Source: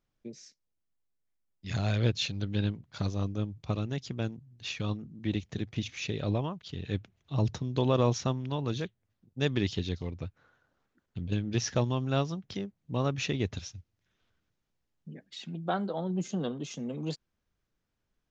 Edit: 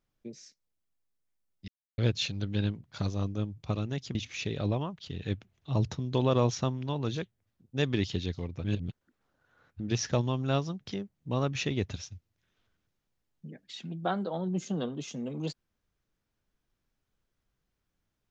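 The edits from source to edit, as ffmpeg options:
-filter_complex "[0:a]asplit=6[a][b][c][d][e][f];[a]atrim=end=1.68,asetpts=PTS-STARTPTS,afade=t=out:st=1.676:d=0.004:c=hsin[g];[b]atrim=start=1.68:end=1.98,asetpts=PTS-STARTPTS,volume=0[h];[c]atrim=start=1.98:end=4.152,asetpts=PTS-STARTPTS,afade=t=in:d=0.004:c=hsin[i];[d]atrim=start=5.778:end=10.272[j];[e]atrim=start=10.268:end=11.432,asetpts=PTS-STARTPTS,areverse[k];[f]atrim=start=11.428[l];[g][h][i]concat=n=3:v=0:a=1[m];[m][j]acrossfade=d=0.004:c1=hsin:c2=hsin[n];[n][k]acrossfade=d=0.004:c1=hsin:c2=hsin[o];[o][l]acrossfade=d=0.004:c1=hsin:c2=hsin"

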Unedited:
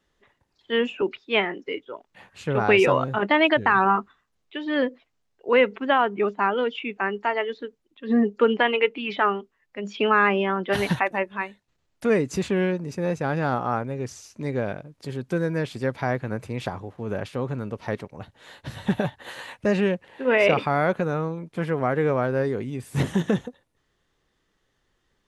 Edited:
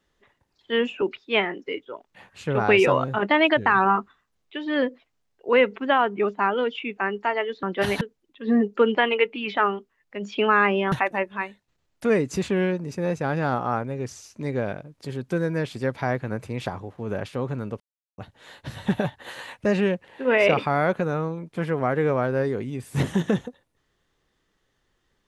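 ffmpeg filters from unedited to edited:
-filter_complex "[0:a]asplit=6[a][b][c][d][e][f];[a]atrim=end=7.632[g];[b]atrim=start=10.538:end=10.922[h];[c]atrim=start=7.628:end=10.542[i];[d]atrim=start=10.918:end=17.8,asetpts=PTS-STARTPTS,afade=t=out:st=6.878:d=0.004:c=hsin[j];[e]atrim=start=17.8:end=18.18,asetpts=PTS-STARTPTS,volume=0[k];[f]atrim=start=18.18,asetpts=PTS-STARTPTS,afade=t=in:d=0.004:c=hsin[l];[g][h]acrossfade=d=0.004:c1=hsin:c2=hsin[m];[m][i]acrossfade=d=0.004:c1=hsin:c2=hsin[n];[j][k][l]concat=n=3:v=0:a=1[o];[n][o]acrossfade=d=0.004:c1=hsin:c2=hsin"

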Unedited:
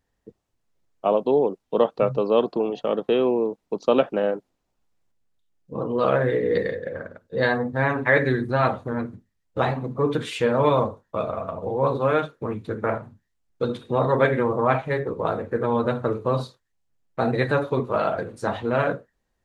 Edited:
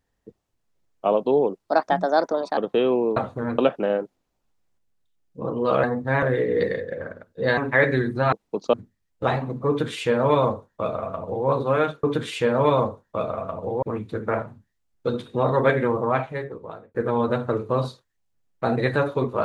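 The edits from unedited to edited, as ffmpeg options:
-filter_complex "[0:a]asplit=13[a][b][c][d][e][f][g][h][i][j][k][l][m];[a]atrim=end=1.644[n];[b]atrim=start=1.64:end=2.92,asetpts=PTS-STARTPTS,asetrate=60417,aresample=44100[o];[c]atrim=start=2.916:end=3.512[p];[d]atrim=start=8.658:end=9.082[q];[e]atrim=start=3.918:end=6.172[r];[f]atrim=start=7.518:end=7.912[s];[g]atrim=start=6.168:end=7.522[t];[h]atrim=start=7.908:end=8.662[u];[i]atrim=start=3.508:end=3.922[v];[j]atrim=start=9.078:end=12.382[w];[k]atrim=start=10.028:end=11.822[x];[l]atrim=start=12.378:end=15.5,asetpts=PTS-STARTPTS,afade=t=out:st=2.092:d=1.03[y];[m]atrim=start=15.5,asetpts=PTS-STARTPTS,afade=t=in:d=0.004:c=hsin[z];[n][o]acrossfade=d=0.004:c1=hsin:c2=hsin[aa];[aa][p]acrossfade=d=0.004:c1=hsin:c2=hsin[ab];[ab][q]acrossfade=d=0.004:c1=hsin:c2=hsin[ac];[ac][r]acrossfade=d=0.004:c1=hsin:c2=hsin[ad];[ad][s]acrossfade=d=0.004:c1=hsin:c2=hsin[ae];[ae][t]acrossfade=d=0.004:c1=hsin:c2=hsin[af];[af][u]acrossfade=d=0.004:c1=hsin:c2=hsin[ag];[ag][v]acrossfade=d=0.004:c1=hsin:c2=hsin[ah];[ah][w]acrossfade=d=0.004:c1=hsin:c2=hsin[ai];[ai][x]acrossfade=d=0.004:c1=hsin:c2=hsin[aj];[y][z]concat=n=2:v=0:a=1[ak];[aj][ak]acrossfade=d=0.004:c1=hsin:c2=hsin"

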